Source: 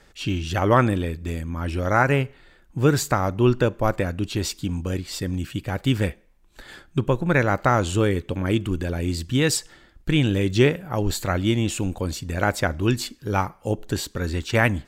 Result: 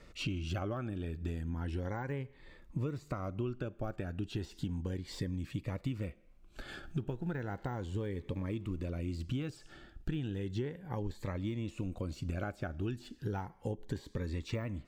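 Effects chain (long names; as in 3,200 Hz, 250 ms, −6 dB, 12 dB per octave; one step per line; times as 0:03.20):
0:06.83–0:08.86: mu-law and A-law mismatch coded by mu
de-essing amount 75%
high-shelf EQ 5,100 Hz −12 dB
downward compressor 10 to 1, threshold −33 dBFS, peak gain reduction 20.5 dB
phaser whose notches keep moving one way rising 0.34 Hz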